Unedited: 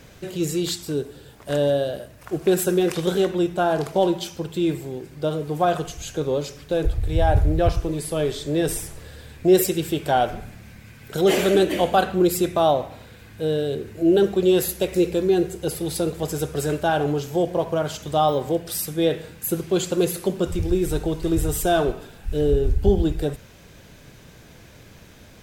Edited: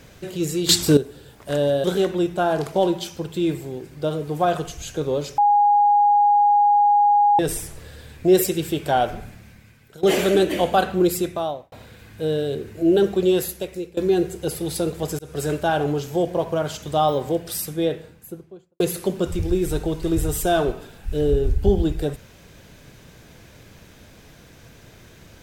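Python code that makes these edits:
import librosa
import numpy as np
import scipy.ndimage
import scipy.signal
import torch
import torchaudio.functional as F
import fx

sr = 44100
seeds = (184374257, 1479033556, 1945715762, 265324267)

y = fx.studio_fade_out(x, sr, start_s=18.7, length_s=1.3)
y = fx.edit(y, sr, fx.clip_gain(start_s=0.69, length_s=0.28, db=12.0),
    fx.cut(start_s=1.84, length_s=1.2),
    fx.bleep(start_s=6.58, length_s=2.01, hz=823.0, db=-12.5),
    fx.fade_out_to(start_s=10.45, length_s=0.78, floor_db=-20.5),
    fx.fade_out_span(start_s=12.28, length_s=0.64),
    fx.fade_out_to(start_s=14.43, length_s=0.74, floor_db=-21.5),
    fx.fade_in_span(start_s=16.39, length_s=0.32, curve='qsin'), tone=tone)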